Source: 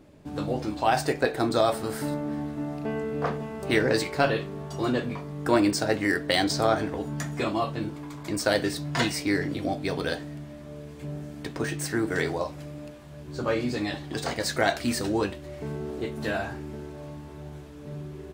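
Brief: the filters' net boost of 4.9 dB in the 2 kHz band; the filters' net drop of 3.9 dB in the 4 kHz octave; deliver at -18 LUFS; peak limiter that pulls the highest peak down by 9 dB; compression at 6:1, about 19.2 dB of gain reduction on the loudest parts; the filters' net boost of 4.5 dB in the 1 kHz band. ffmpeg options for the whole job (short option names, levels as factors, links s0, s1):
-af "equalizer=f=1000:t=o:g=5.5,equalizer=f=2000:t=o:g=5.5,equalizer=f=4000:t=o:g=-7,acompressor=threshold=0.0158:ratio=6,volume=14.1,alimiter=limit=0.447:level=0:latency=1"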